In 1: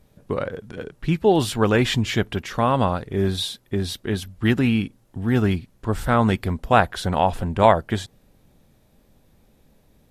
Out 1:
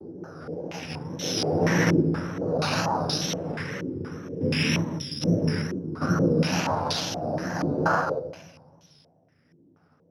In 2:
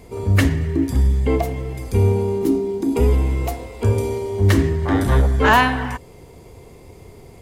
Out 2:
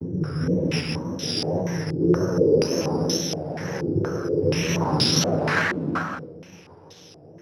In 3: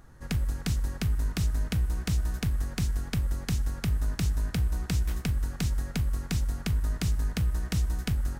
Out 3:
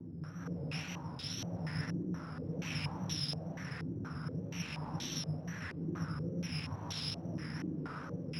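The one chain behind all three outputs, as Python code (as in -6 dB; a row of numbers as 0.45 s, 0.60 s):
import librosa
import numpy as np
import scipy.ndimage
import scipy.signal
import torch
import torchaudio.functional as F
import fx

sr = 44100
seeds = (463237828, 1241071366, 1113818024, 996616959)

y = fx.spec_steps(x, sr, hold_ms=400)
y = fx.noise_vocoder(y, sr, seeds[0], bands=8)
y = fx.rotary(y, sr, hz=1.0)
y = fx.chorus_voices(y, sr, voices=4, hz=0.46, base_ms=12, depth_ms=1.0, mix_pct=40)
y = y + 10.0 ** (-6.0 / 20.0) * np.pad(y, (int(175 * sr / 1000.0), 0))[:len(y)]
y = fx.room_shoebox(y, sr, seeds[1], volume_m3=900.0, walls='mixed', distance_m=0.5)
y = (np.kron(y[::8], np.eye(8)[0]) * 8)[:len(y)]
y = fx.wow_flutter(y, sr, seeds[2], rate_hz=2.1, depth_cents=99.0)
y = fx.filter_held_lowpass(y, sr, hz=4.2, low_hz=350.0, high_hz=3600.0)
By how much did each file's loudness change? 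-4.5 LU, -4.5 LU, -9.5 LU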